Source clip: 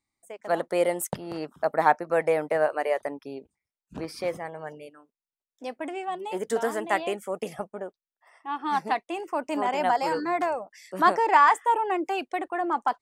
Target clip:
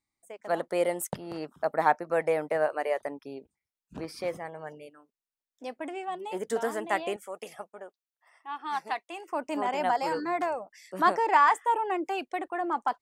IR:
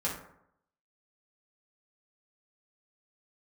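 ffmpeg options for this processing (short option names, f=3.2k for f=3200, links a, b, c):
-filter_complex "[0:a]asettb=1/sr,asplit=3[a][b][c];[a]atrim=end=7.164[d];[b]atrim=start=7.16:end=9.29,asetpts=PTS-STARTPTS,afade=t=in:d=0.004:c=qsin,afade=t=out:st=2.126:d=0.004:c=qsin,highpass=f=830:p=1[e];[c]atrim=start=9.286[f];[d][e]acrossfade=d=0.004:c1=hsin:c2=qsin[g];[g][f]acrossfade=d=0.004:c1=qsin:c2=hsin,volume=-3dB"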